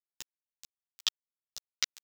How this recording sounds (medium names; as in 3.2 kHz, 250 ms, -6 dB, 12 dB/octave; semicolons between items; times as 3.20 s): chopped level 6.1 Hz, depth 60%, duty 20%; a quantiser's noise floor 6-bit, dither none; a shimmering, thickened sound